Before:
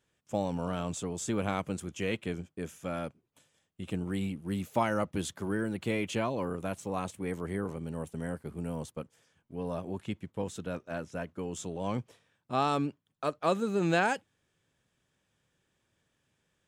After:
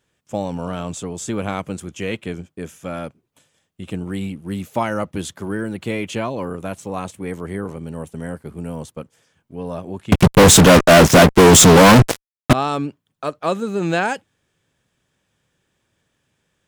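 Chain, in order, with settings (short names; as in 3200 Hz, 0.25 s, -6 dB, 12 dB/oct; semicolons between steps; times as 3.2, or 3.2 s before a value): 10.12–12.53 fuzz box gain 52 dB, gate -55 dBFS; gain +7 dB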